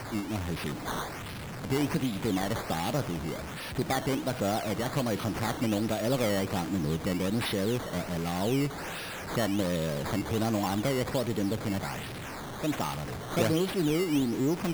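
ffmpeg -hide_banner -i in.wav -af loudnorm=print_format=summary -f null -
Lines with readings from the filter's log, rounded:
Input Integrated:    -30.5 LUFS
Input True Peak:     -14.0 dBTP
Input LRA:             2.0 LU
Input Threshold:     -40.5 LUFS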